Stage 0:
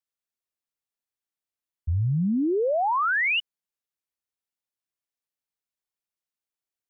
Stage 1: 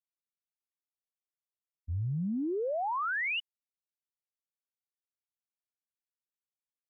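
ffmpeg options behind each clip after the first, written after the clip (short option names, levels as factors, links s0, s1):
-af "agate=range=0.0224:threshold=0.141:ratio=3:detection=peak"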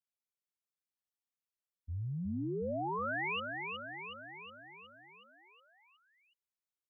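-af "aecho=1:1:367|734|1101|1468|1835|2202|2569|2936:0.562|0.337|0.202|0.121|0.0729|0.0437|0.0262|0.0157,volume=0.531"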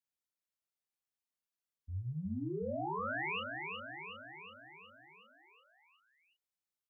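-filter_complex "[0:a]asplit=2[s0][s1];[s1]adelay=32,volume=0.596[s2];[s0][s2]amix=inputs=2:normalize=0,volume=0.708"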